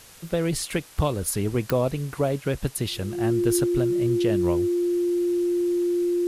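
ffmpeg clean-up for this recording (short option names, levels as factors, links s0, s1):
-af "adeclick=t=4,bandreject=f=350:w=30,afwtdn=0.0045"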